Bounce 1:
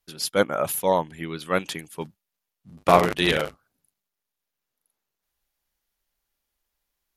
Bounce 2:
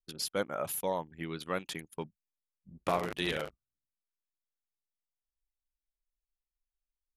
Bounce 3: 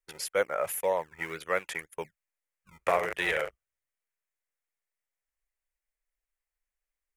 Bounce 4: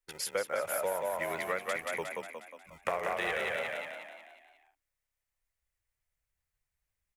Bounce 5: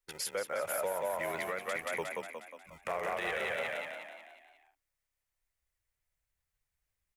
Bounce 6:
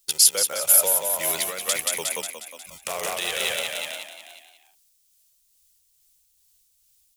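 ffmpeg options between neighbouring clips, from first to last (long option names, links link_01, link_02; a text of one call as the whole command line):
ffmpeg -i in.wav -af "anlmdn=0.398,acompressor=threshold=-33dB:ratio=2,volume=-3dB" out.wav
ffmpeg -i in.wav -filter_complex "[0:a]acrossover=split=310[link_01][link_02];[link_01]acrusher=samples=27:mix=1:aa=0.000001:lfo=1:lforange=27:lforate=1.9[link_03];[link_03][link_02]amix=inputs=2:normalize=0,equalizer=frequency=125:width_type=o:width=1:gain=-4,equalizer=frequency=250:width_type=o:width=1:gain=-12,equalizer=frequency=500:width_type=o:width=1:gain=9,equalizer=frequency=2000:width_type=o:width=1:gain=12,equalizer=frequency=4000:width_type=o:width=1:gain=-8,equalizer=frequency=8000:width_type=o:width=1:gain=4" out.wav
ffmpeg -i in.wav -filter_complex "[0:a]asplit=2[link_01][link_02];[link_02]asplit=7[link_03][link_04][link_05][link_06][link_07][link_08][link_09];[link_03]adelay=180,afreqshift=34,volume=-3dB[link_10];[link_04]adelay=360,afreqshift=68,volume=-8.8dB[link_11];[link_05]adelay=540,afreqshift=102,volume=-14.7dB[link_12];[link_06]adelay=720,afreqshift=136,volume=-20.5dB[link_13];[link_07]adelay=900,afreqshift=170,volume=-26.4dB[link_14];[link_08]adelay=1080,afreqshift=204,volume=-32.2dB[link_15];[link_09]adelay=1260,afreqshift=238,volume=-38.1dB[link_16];[link_10][link_11][link_12][link_13][link_14][link_15][link_16]amix=inputs=7:normalize=0[link_17];[link_01][link_17]amix=inputs=2:normalize=0,acompressor=threshold=-29dB:ratio=6" out.wav
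ffmpeg -i in.wav -af "alimiter=level_in=1dB:limit=-24dB:level=0:latency=1:release=22,volume=-1dB" out.wav
ffmpeg -i in.wav -af "aexciter=amount=6:drive=7.7:freq=2900,tremolo=f=2.3:d=0.3,volume=5dB" out.wav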